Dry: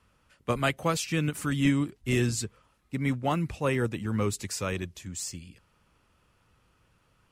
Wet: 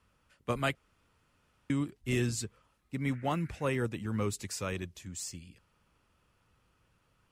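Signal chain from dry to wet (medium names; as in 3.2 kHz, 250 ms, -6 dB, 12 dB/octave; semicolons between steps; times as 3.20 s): 0.75–1.70 s: room tone; 3.11–3.68 s: band noise 1.4–2.3 kHz -54 dBFS; trim -4.5 dB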